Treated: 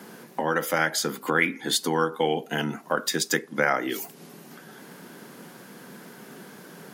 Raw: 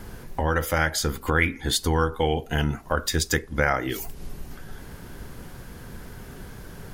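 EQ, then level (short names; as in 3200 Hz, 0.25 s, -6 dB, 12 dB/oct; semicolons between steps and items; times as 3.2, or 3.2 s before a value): steep high-pass 170 Hz 36 dB/oct; 0.0 dB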